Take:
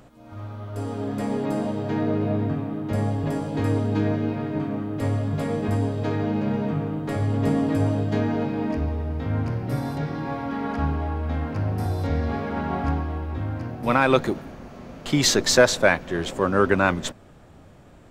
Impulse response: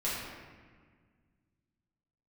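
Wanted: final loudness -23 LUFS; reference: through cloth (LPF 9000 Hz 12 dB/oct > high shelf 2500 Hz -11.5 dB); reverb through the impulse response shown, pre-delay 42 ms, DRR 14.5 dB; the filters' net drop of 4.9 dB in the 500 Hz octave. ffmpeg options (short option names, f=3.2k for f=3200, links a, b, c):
-filter_complex "[0:a]equalizer=f=500:t=o:g=-5.5,asplit=2[a][b];[1:a]atrim=start_sample=2205,adelay=42[c];[b][c]afir=irnorm=-1:irlink=0,volume=-21dB[d];[a][d]amix=inputs=2:normalize=0,lowpass=9k,highshelf=f=2.5k:g=-11.5,volume=3.5dB"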